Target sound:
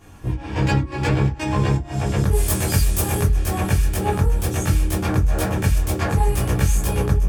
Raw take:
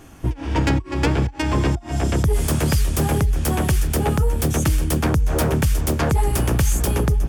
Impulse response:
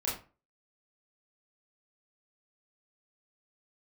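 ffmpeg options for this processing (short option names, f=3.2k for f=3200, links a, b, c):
-filter_complex "[0:a]asettb=1/sr,asplit=3[a][b][c];[a]atrim=end=2.314[d];[b]atrim=start=2.31:end=3.26,asetpts=PTS-STARTPTS,afade=t=in:d=0.004:c=qsin,afade=t=out:st=0.946:d=0.004:c=qsin,highshelf=f=6.7k:g=10[e];[c]atrim=start=3.256[f];[d][e]acrossfade=d=0.004:c1=hsin:c2=qsin[g];[g][f]acrossfade=d=0.004:c1=qsin:c2=hsin[h];[1:a]atrim=start_sample=2205,asetrate=79380,aresample=44100[i];[h][i]afir=irnorm=-1:irlink=0,volume=-1.5dB"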